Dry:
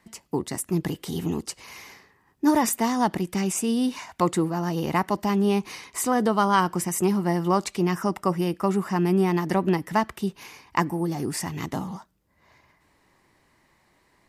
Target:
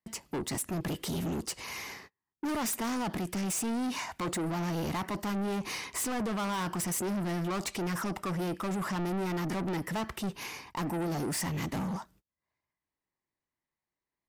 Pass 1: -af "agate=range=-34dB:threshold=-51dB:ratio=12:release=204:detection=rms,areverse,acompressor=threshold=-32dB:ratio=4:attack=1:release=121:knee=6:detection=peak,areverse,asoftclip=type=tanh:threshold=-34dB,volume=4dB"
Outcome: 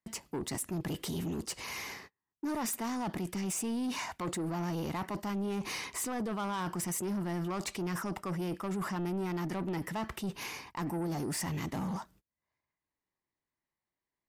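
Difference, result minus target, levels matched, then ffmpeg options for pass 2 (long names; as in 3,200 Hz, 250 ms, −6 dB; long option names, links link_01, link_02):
downward compressor: peak gain reduction +9 dB
-af "agate=range=-34dB:threshold=-51dB:ratio=12:release=204:detection=rms,areverse,acompressor=threshold=-20dB:ratio=4:attack=1:release=121:knee=6:detection=peak,areverse,asoftclip=type=tanh:threshold=-34dB,volume=4dB"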